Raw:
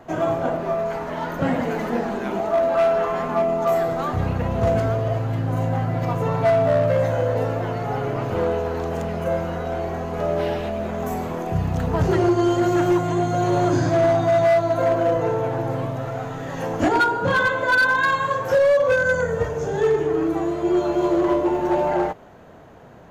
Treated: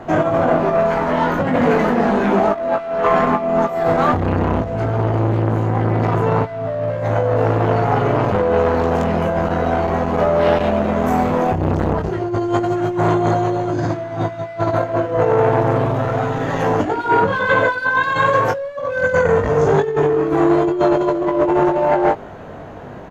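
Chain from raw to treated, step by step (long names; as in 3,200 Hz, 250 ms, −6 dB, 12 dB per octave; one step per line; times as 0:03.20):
low-pass filter 3,200 Hz 6 dB per octave
compressor whose output falls as the input rises −23 dBFS, ratio −0.5
double-tracking delay 20 ms −5 dB
saturating transformer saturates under 700 Hz
level +8 dB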